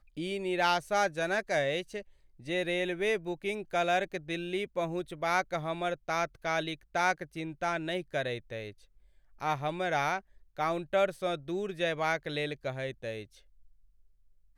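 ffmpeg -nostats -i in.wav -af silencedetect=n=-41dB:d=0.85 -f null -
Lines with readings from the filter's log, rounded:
silence_start: 13.24
silence_end: 14.58 | silence_duration: 1.34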